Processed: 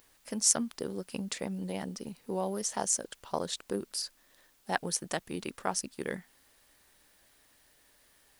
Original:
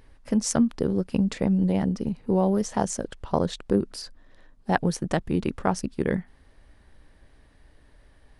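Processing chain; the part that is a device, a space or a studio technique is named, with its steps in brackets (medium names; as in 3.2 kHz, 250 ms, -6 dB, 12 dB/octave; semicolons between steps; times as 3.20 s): turntable without a phono preamp (RIAA curve recording; white noise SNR 31 dB); trim -6.5 dB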